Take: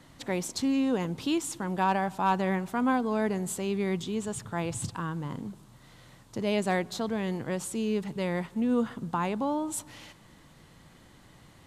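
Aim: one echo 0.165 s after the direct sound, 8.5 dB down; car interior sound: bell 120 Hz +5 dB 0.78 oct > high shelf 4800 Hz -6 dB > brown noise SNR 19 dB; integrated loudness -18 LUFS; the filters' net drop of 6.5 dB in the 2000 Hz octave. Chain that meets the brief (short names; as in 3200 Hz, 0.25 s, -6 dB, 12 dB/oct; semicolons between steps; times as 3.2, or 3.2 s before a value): bell 120 Hz +5 dB 0.78 oct; bell 2000 Hz -7.5 dB; high shelf 4800 Hz -6 dB; echo 0.165 s -8.5 dB; brown noise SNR 19 dB; gain +12 dB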